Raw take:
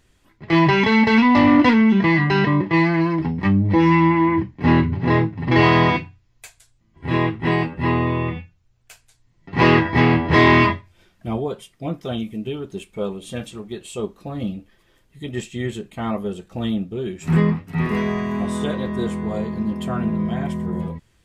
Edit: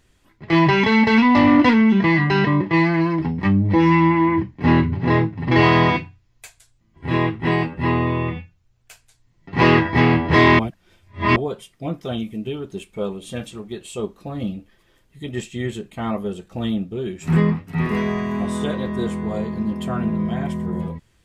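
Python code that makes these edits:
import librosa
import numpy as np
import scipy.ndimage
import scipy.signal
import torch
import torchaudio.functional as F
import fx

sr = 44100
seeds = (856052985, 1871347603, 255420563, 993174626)

y = fx.edit(x, sr, fx.reverse_span(start_s=10.59, length_s=0.77), tone=tone)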